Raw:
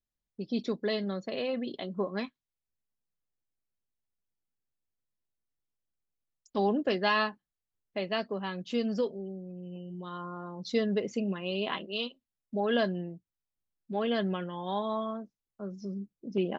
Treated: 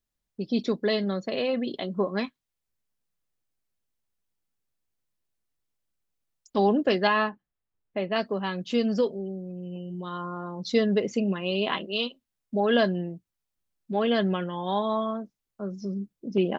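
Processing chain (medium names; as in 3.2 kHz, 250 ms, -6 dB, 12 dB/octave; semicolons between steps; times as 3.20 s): 7.07–8.16 s: distance through air 360 m; trim +5.5 dB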